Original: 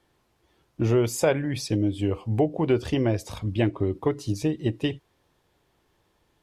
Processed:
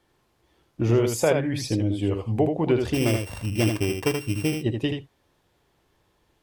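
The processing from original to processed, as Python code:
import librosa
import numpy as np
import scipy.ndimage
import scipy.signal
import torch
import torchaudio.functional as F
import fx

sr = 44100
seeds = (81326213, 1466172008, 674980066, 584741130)

y = fx.sample_sort(x, sr, block=16, at=(2.93, 4.54), fade=0.02)
y = y + 10.0 ** (-5.5 / 20.0) * np.pad(y, (int(79 * sr / 1000.0), 0))[:len(y)]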